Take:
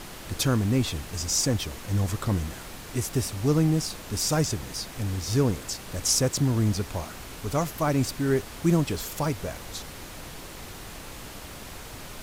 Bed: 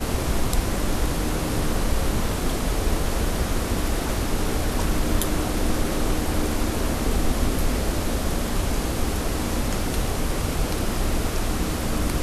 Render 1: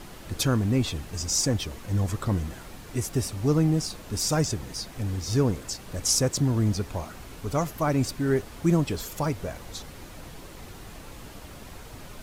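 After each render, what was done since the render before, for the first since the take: denoiser 6 dB, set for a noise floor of -41 dBFS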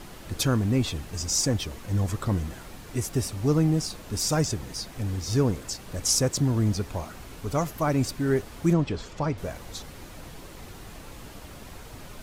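8.73–9.38 air absorption 120 m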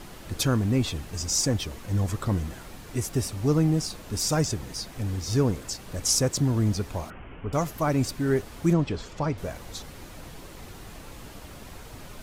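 7.1–7.53 steep low-pass 3100 Hz 96 dB/oct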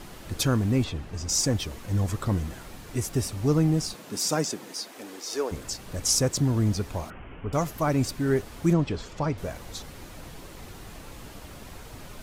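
0.84–1.29 LPF 2500 Hz 6 dB/oct; 3.93–5.51 HPF 130 Hz -> 420 Hz 24 dB/oct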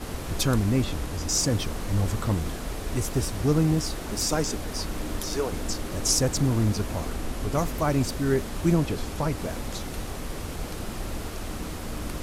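add bed -9.5 dB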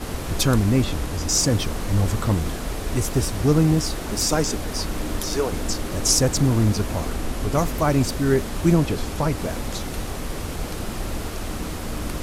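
gain +4.5 dB

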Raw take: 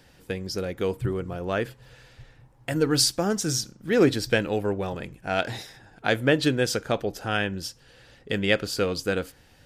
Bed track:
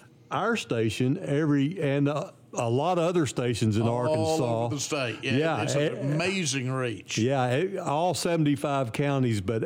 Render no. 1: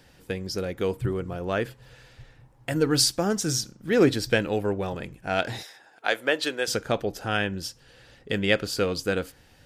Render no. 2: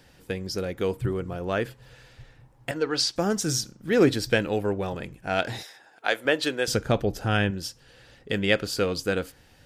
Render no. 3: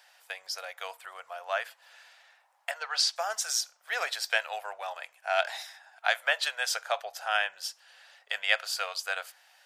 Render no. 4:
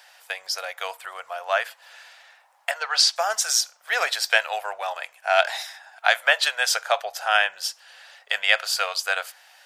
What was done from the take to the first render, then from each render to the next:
5.63–6.68 HPF 520 Hz
2.71–3.16 three-band isolator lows -14 dB, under 370 Hz, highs -20 dB, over 6100 Hz; 6.25–7.51 low shelf 200 Hz +10.5 dB
elliptic high-pass 660 Hz, stop band 50 dB
gain +8 dB; limiter -2 dBFS, peak gain reduction 2.5 dB

